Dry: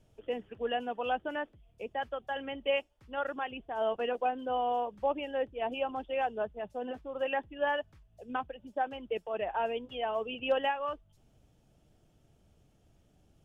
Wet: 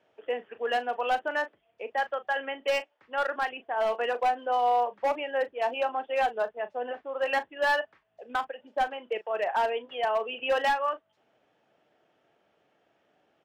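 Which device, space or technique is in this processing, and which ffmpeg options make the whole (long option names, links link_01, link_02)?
megaphone: -filter_complex "[0:a]highpass=520,lowpass=2600,equalizer=frequency=1800:width_type=o:width=0.52:gain=4.5,asoftclip=type=hard:threshold=-27.5dB,asplit=2[link_01][link_02];[link_02]adelay=37,volume=-13.5dB[link_03];[link_01][link_03]amix=inputs=2:normalize=0,volume=7dB"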